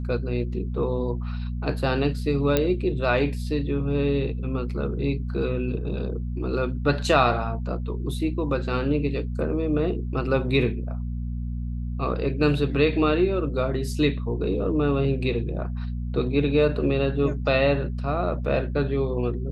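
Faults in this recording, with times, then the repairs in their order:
hum 60 Hz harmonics 4 -29 dBFS
2.57 s: pop -7 dBFS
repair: de-click; de-hum 60 Hz, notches 4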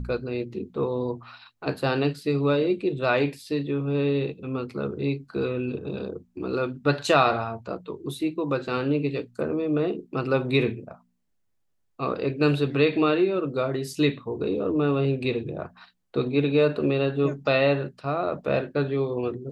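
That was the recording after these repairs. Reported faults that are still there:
nothing left

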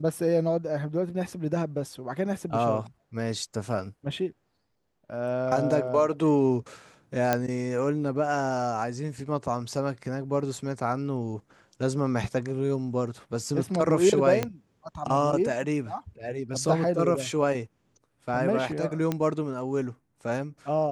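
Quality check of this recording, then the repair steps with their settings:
7.33 s: pop -9 dBFS
14.43 s: pop -12 dBFS
19.12 s: pop -14 dBFS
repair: de-click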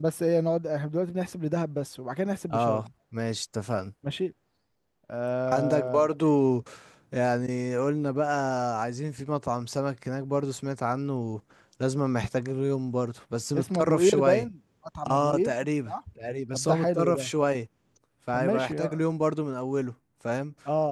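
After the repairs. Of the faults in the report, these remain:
14.43 s: pop

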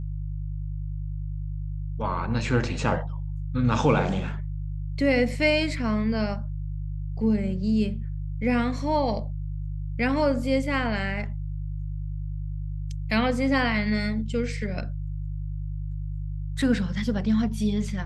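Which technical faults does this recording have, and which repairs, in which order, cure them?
hum 50 Hz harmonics 3 -31 dBFS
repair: de-hum 50 Hz, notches 3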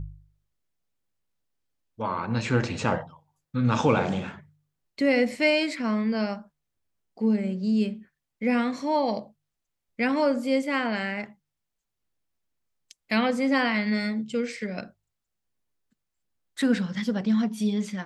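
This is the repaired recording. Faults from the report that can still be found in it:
nothing left

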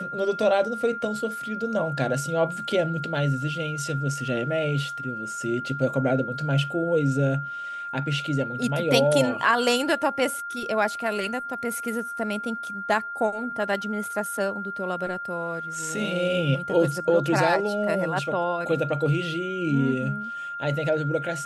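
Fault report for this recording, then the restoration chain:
whine 1.4 kHz -31 dBFS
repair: band-stop 1.4 kHz, Q 30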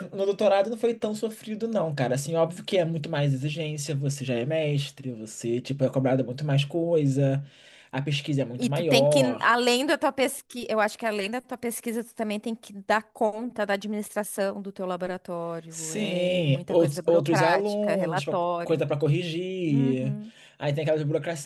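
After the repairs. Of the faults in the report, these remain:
nothing left

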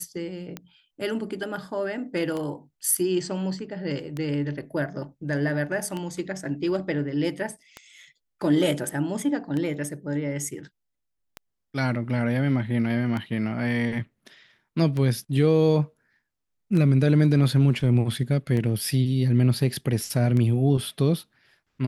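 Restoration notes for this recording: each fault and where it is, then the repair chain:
tick 33 1/3 rpm -18 dBFS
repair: de-click

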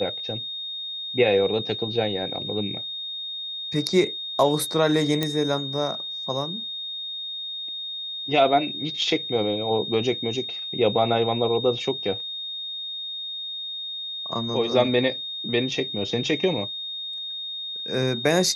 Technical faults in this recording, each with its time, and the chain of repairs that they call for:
whine 3.7 kHz -30 dBFS
5.23 s: pop -9 dBFS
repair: de-click; band-stop 3.7 kHz, Q 30

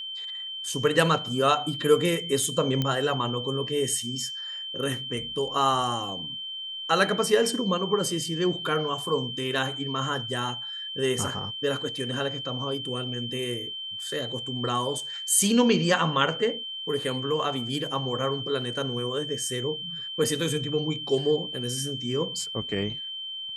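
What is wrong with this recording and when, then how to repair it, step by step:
whine 3.1 kHz -33 dBFS
2.82 s: pop -13 dBFS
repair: de-click; band-stop 3.1 kHz, Q 30

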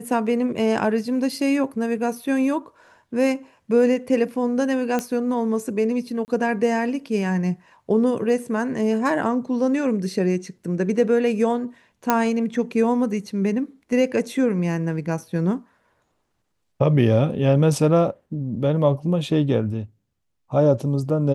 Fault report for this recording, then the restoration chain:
4.99 s: pop -11 dBFS
6.25–6.28 s: dropout 29 ms
12.10 s: pop -4 dBFS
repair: de-click; interpolate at 6.25 s, 29 ms

